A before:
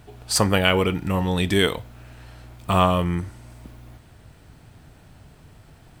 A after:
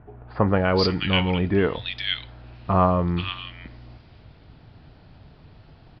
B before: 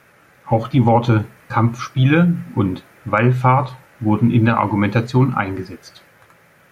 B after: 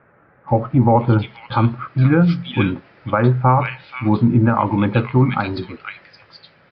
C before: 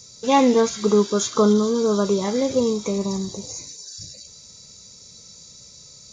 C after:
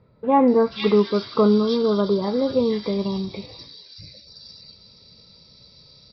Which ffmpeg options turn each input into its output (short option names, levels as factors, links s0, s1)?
-filter_complex "[0:a]aresample=11025,aresample=44100,acrossover=split=1800[s0][s1];[s1]adelay=480[s2];[s0][s2]amix=inputs=2:normalize=0"